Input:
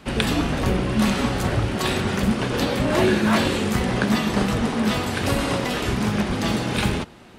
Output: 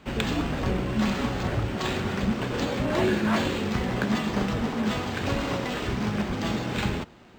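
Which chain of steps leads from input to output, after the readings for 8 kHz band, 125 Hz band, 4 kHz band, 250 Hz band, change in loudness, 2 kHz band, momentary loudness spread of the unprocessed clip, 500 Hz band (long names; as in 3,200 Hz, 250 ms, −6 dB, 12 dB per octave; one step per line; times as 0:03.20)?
−9.0 dB, −5.0 dB, −6.5 dB, −5.0 dB, −5.0 dB, −5.5 dB, 4 LU, −5.0 dB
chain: high-shelf EQ 8,000 Hz +5.5 dB
linearly interpolated sample-rate reduction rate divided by 4×
level −5 dB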